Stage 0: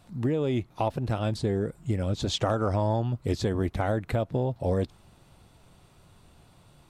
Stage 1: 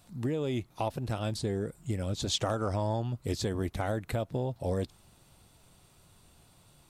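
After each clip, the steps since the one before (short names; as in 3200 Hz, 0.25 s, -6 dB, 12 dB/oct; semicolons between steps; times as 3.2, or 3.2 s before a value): high shelf 4500 Hz +11 dB; gain -5 dB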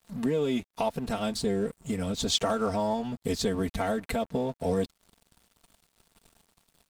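comb 4.4 ms, depth 94%; in parallel at 0 dB: compressor 6:1, threshold -38 dBFS, peak gain reduction 15 dB; on the sum: crossover distortion -48 dBFS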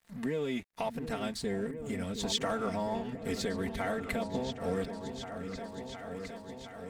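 bell 1900 Hz +8.5 dB 0.65 oct; repeats that get brighter 0.715 s, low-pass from 400 Hz, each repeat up 2 oct, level -6 dB; gain -6.5 dB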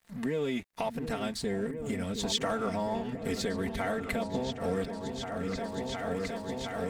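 recorder AGC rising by 7.6 dB/s; gain +1.5 dB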